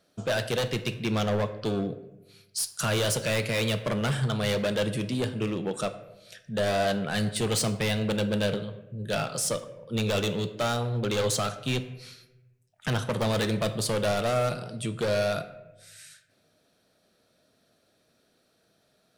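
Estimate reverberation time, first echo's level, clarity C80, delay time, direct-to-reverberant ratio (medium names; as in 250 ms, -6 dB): 0.95 s, no echo, 15.0 dB, no echo, 9.0 dB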